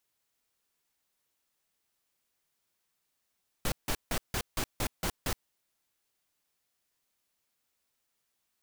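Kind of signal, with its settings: noise bursts pink, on 0.07 s, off 0.16 s, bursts 8, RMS -30.5 dBFS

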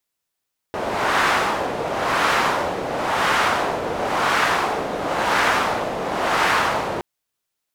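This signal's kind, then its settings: wind-like swept noise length 6.27 s, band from 580 Hz, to 1.3 kHz, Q 1.2, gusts 6, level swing 7.5 dB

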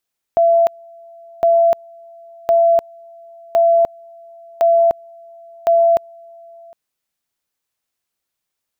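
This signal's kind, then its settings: two-level tone 674 Hz -9 dBFS, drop 28.5 dB, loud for 0.30 s, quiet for 0.76 s, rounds 6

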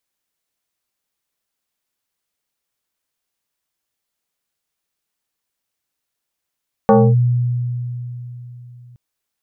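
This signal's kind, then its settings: FM tone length 2.07 s, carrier 122 Hz, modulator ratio 2.74, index 2.5, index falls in 0.26 s linear, decay 3.65 s, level -6 dB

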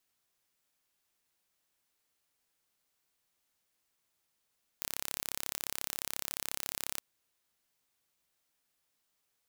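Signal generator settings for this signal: pulse train 34.2 per s, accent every 0, -8.5 dBFS 2.19 s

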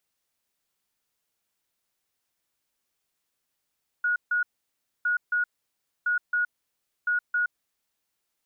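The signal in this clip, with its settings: beep pattern sine 1.45 kHz, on 0.12 s, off 0.15 s, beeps 2, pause 0.62 s, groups 4, -21.5 dBFS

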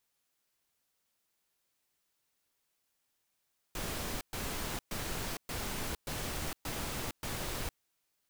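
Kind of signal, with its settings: noise bursts pink, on 0.46 s, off 0.12 s, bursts 7, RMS -37.5 dBFS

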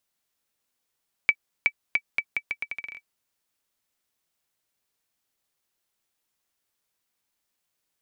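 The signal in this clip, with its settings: bouncing ball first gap 0.37 s, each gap 0.79, 2.3 kHz, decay 61 ms -7 dBFS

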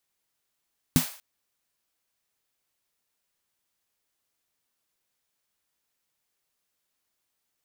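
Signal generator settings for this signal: snare drum length 0.24 s, tones 160 Hz, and 250 Hz, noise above 570 Hz, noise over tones -9 dB, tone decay 0.12 s, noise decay 0.46 s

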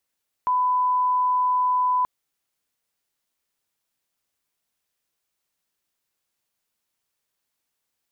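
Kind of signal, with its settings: line-up tone -18 dBFS 1.58 s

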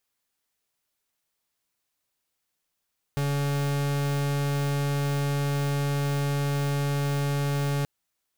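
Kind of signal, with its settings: pulse 142 Hz, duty 43% -26 dBFS 4.68 s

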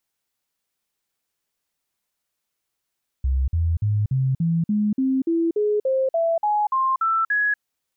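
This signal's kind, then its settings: stepped sine 66 Hz up, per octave 3, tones 15, 0.24 s, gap 0.05 s -17.5 dBFS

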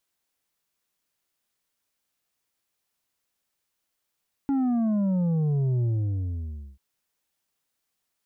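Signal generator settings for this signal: sub drop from 280 Hz, over 2.29 s, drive 6 dB, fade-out 0.95 s, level -22 dB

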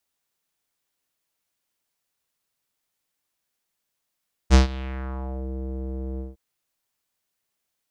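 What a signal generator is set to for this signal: synth note square C2 12 dB/octave, low-pass 440 Hz, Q 2.1, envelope 4 oct, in 0.97 s, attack 41 ms, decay 0.13 s, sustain -20.5 dB, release 0.17 s, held 1.69 s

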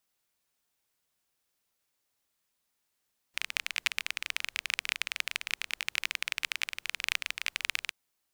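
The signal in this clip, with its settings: rain from filtered ticks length 4.57 s, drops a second 21, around 2.4 kHz, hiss -30 dB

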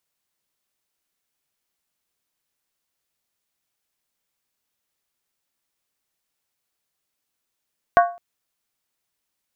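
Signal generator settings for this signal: skin hit length 0.21 s, lowest mode 697 Hz, decay 0.36 s, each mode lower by 5 dB, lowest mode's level -8 dB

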